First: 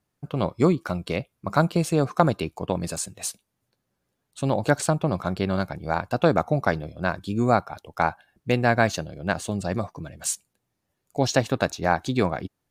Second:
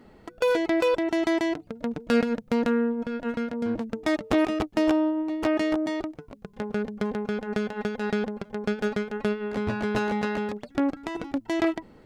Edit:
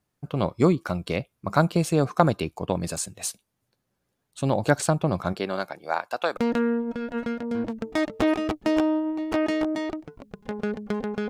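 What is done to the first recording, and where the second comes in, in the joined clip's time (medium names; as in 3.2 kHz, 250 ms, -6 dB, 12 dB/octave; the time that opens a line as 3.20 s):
first
5.32–6.37 s: high-pass 260 Hz -> 820 Hz
6.37 s: go over to second from 2.48 s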